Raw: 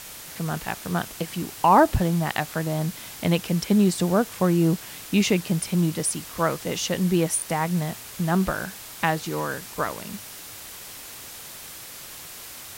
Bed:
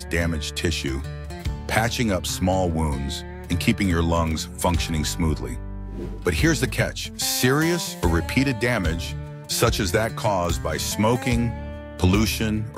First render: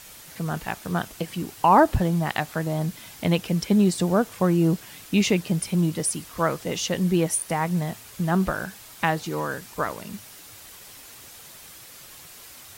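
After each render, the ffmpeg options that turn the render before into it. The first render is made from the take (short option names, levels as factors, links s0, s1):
-af "afftdn=nr=6:nf=-41"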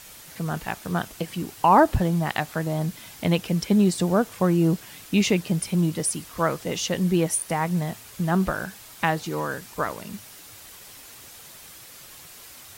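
-af anull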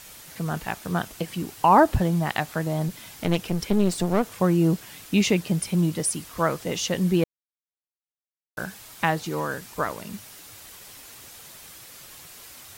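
-filter_complex "[0:a]asettb=1/sr,asplit=3[s0][s1][s2];[s0]atrim=end=2.884[s3];[s1]atrim=start=2.88:end=4.35,asetpts=PTS-STARTPTS,afade=t=in:d=0.004:c=qsin,afade=t=out:st=1.466:d=0.004:c=qsin,aeval=exprs='clip(val(0),-1,0.0299)':c=same[s4];[s2]atrim=start=4.346[s5];[s3][s4]acrossfade=d=0.004:c1=hsin:c2=qsin[s6];[s6][s5]acrossfade=d=0.004:c1=qsin:c2=hsin,asplit=3[s7][s8][s9];[s7]atrim=end=7.24,asetpts=PTS-STARTPTS,afade=t=out:st=7.236:d=0.004:c=hsin[s10];[s8]atrim=start=7.24:end=8.57,asetpts=PTS-STARTPTS,volume=0[s11];[s9]atrim=start=8.57,asetpts=PTS-STARTPTS,afade=t=in:d=0.004:c=hsin[s12];[s10][s11][s12]concat=n=3:v=0:a=1"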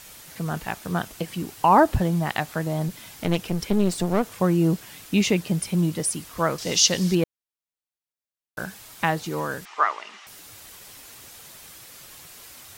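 -filter_complex "[0:a]asettb=1/sr,asplit=3[s0][s1][s2];[s0]atrim=end=6.584[s3];[s1]atrim=start=6.58:end=7.15,asetpts=PTS-STARTPTS,afade=t=in:d=0.004:c=qsin,afade=t=out:st=0.566:d=0.004:c=qsin,equalizer=f=5100:t=o:w=1.3:g=14.5[s4];[s2]atrim=start=7.146[s5];[s3][s4]acrossfade=d=0.004:c1=hsin:c2=qsin[s6];[s6][s5]acrossfade=d=0.004:c1=qsin:c2=hsin,asettb=1/sr,asplit=3[s7][s8][s9];[s7]atrim=end=9.654[s10];[s8]atrim=start=9.65:end=10.27,asetpts=PTS-STARTPTS,afade=t=in:d=0.004:c=qsin,afade=t=out:st=0.616:d=0.004:c=qsin,highpass=f=420:w=0.5412,highpass=f=420:w=1.3066,equalizer=f=520:t=q:w=4:g=-10,equalizer=f=810:t=q:w=4:g=5,equalizer=f=1200:t=q:w=4:g=10,equalizer=f=2000:t=q:w=4:g=8,equalizer=f=2900:t=q:w=4:g=6,equalizer=f=4500:t=q:w=4:g=-3,lowpass=f=5900:w=0.5412,lowpass=f=5900:w=1.3066[s11];[s9]atrim=start=10.266[s12];[s10][s11]acrossfade=d=0.004:c1=hsin:c2=qsin[s13];[s13][s12]acrossfade=d=0.004:c1=qsin:c2=hsin"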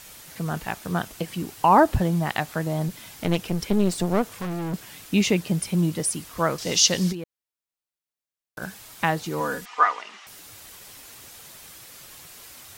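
-filter_complex "[0:a]asettb=1/sr,asplit=3[s0][s1][s2];[s0]atrim=end=4.284[s3];[s1]atrim=start=4.28:end=4.74,asetpts=PTS-STARTPTS,afade=t=in:d=0.004:c=qsin,afade=t=out:st=0.456:d=0.004:c=qsin,volume=23.7,asoftclip=hard,volume=0.0422[s4];[s2]atrim=start=4.736[s5];[s3][s4]acrossfade=d=0.004:c1=hsin:c2=qsin[s6];[s6][s5]acrossfade=d=0.004:c1=qsin:c2=hsin,asplit=3[s7][s8][s9];[s7]afade=t=out:st=7.11:d=0.02[s10];[s8]acompressor=threshold=0.0282:ratio=5:attack=3.2:release=140:knee=1:detection=peak,afade=t=in:st=7.11:d=0.02,afade=t=out:st=8.61:d=0.02[s11];[s9]afade=t=in:st=8.61:d=0.02[s12];[s10][s11][s12]amix=inputs=3:normalize=0,asettb=1/sr,asplit=3[s13][s14][s15];[s13]atrim=end=9.404[s16];[s14]atrim=start=9.4:end=10.02,asetpts=PTS-STARTPTS,afade=t=in:d=0.004:c=qsin,afade=t=out:st=0.616:d=0.004:c=qsin,aecho=1:1:4.1:0.65,atrim=end_sample=27342[s17];[s15]atrim=start=10.016[s18];[s16][s17]acrossfade=d=0.004:c1=hsin:c2=qsin[s19];[s19][s18]acrossfade=d=0.004:c1=qsin:c2=hsin"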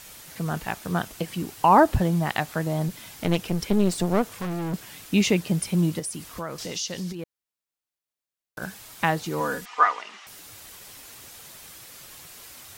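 -filter_complex "[0:a]asettb=1/sr,asplit=3[s0][s1][s2];[s0]atrim=end=5.994[s3];[s1]atrim=start=5.99:end=7.19,asetpts=PTS-STARTPTS,afade=t=in:d=0.004:c=qsin,afade=t=out:st=1.196:d=0.004:c=qsin,acompressor=threshold=0.0282:ratio=3:attack=3.2:release=140:knee=1:detection=peak[s4];[s2]atrim=start=7.186[s5];[s3][s4]acrossfade=d=0.004:c1=hsin:c2=qsin[s6];[s6][s5]acrossfade=d=0.004:c1=qsin:c2=hsin"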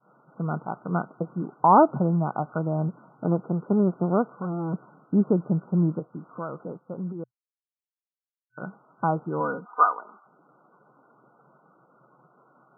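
-af "agate=range=0.0224:threshold=0.01:ratio=3:detection=peak,afftfilt=real='re*between(b*sr/4096,120,1500)':imag='im*between(b*sr/4096,120,1500)':win_size=4096:overlap=0.75"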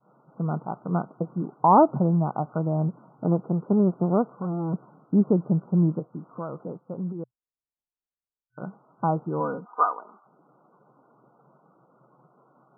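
-af "lowpass=f=1200:w=0.5412,lowpass=f=1200:w=1.3066,lowshelf=f=68:g=11"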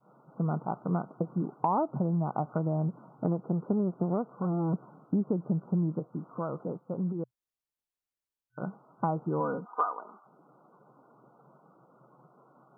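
-af "acompressor=threshold=0.0562:ratio=6"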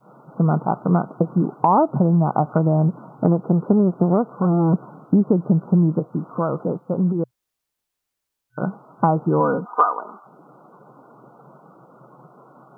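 -af "volume=3.98,alimiter=limit=0.794:level=0:latency=1"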